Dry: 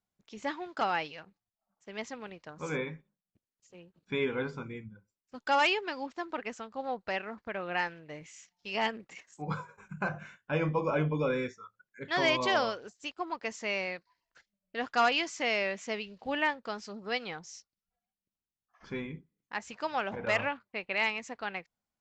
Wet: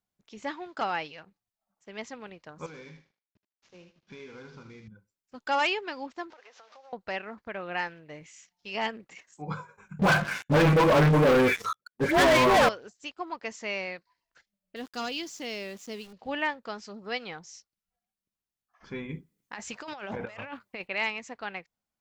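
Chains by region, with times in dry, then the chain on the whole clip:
2.66–4.88 CVSD 32 kbps + compressor 4:1, threshold -45 dBFS + thinning echo 77 ms, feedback 22%, high-pass 880 Hz, level -6 dB
6.3–6.93 delta modulation 32 kbps, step -45.5 dBFS + HPF 460 Hz 24 dB/oct + compressor 10:1, threshold -49 dBFS
9.99–12.69 treble ducked by the level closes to 1600 Hz, closed at -25.5 dBFS + dispersion highs, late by 96 ms, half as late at 1100 Hz + sample leveller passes 5
14.76–16.13 band shelf 1200 Hz -10.5 dB 2.5 oct + sample gate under -49 dBFS
19.09–20.88 high shelf 5200 Hz +5.5 dB + negative-ratio compressor -39 dBFS
whole clip: dry

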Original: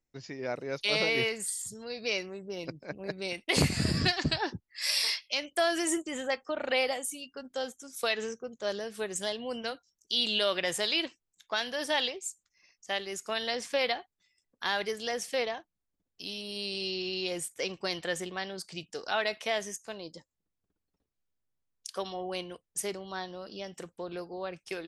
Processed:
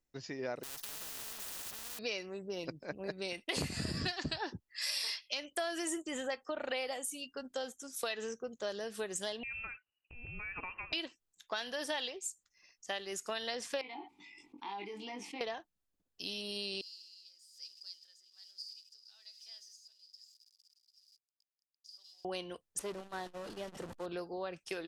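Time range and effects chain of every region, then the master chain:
0.63–1.99 half-waves squared off + compressor 4:1, threshold -36 dBFS + spectral compressor 10:1
9.43–10.93 compressor 4:1, threshold -38 dBFS + inverted band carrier 2900 Hz
13.81–15.41 vowel filter u + doubler 20 ms -3 dB + fast leveller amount 70%
16.81–22.25 switching spikes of -29 dBFS + tremolo 1.1 Hz, depth 57% + band-pass 4900 Hz, Q 20
22.79–24.06 delta modulation 64 kbps, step -37 dBFS + high shelf 3000 Hz -11 dB + core saturation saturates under 630 Hz
whole clip: bell 130 Hz -3 dB 1.5 oct; notch 2200 Hz, Q 15; compressor 3:1, threshold -36 dBFS

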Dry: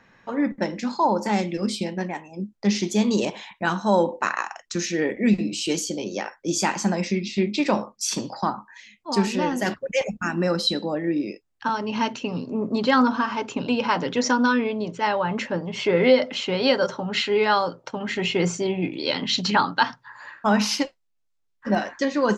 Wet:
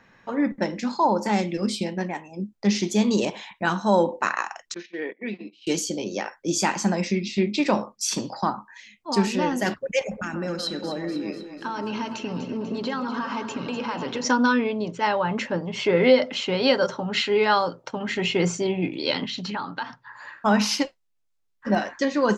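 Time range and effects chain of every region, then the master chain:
4.74–5.67 gate -27 dBFS, range -18 dB + speaker cabinet 500–3400 Hz, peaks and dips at 570 Hz -9 dB, 830 Hz -7 dB, 1300 Hz -8 dB, 1900 Hz -4 dB, 2700 Hz -5 dB
9.99–14.25 compressor 5:1, threshold -26 dBFS + echo with dull and thin repeats by turns 0.123 s, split 1500 Hz, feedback 77%, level -8 dB
19.25–20.17 tone controls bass 0 dB, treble -6 dB + compressor 2.5:1, threshold -31 dBFS
whole clip: dry

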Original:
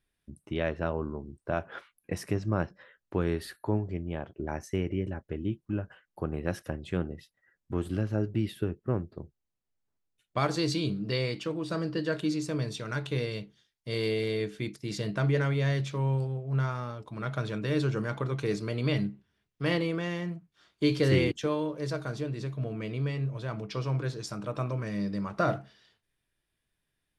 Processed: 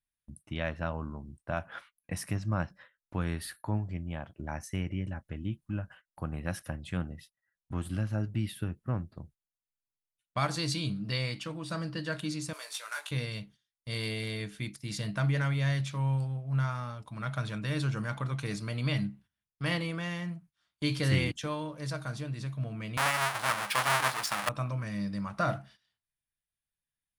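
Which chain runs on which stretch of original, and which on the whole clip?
12.53–13.11 CVSD 64 kbps + Bessel high-pass 800 Hz, order 6 + doubler 19 ms -5 dB
22.97–24.49 half-waves squared off + HPF 730 Hz 6 dB/oct + bell 1200 Hz +12 dB 2.9 oct
whole clip: bell 9800 Hz +9 dB 0.38 oct; gate -52 dBFS, range -14 dB; bell 400 Hz -14.5 dB 0.75 oct

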